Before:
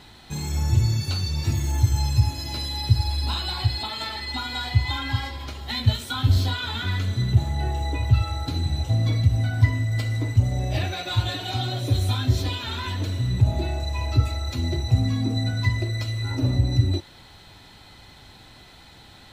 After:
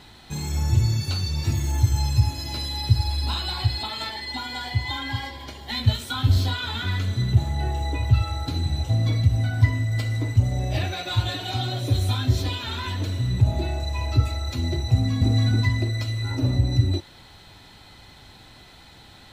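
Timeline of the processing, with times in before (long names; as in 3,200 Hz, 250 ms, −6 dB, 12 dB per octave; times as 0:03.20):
0:04.10–0:05.72: notch comb filter 1,300 Hz
0:14.93–0:15.33: delay throw 280 ms, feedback 30%, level −1 dB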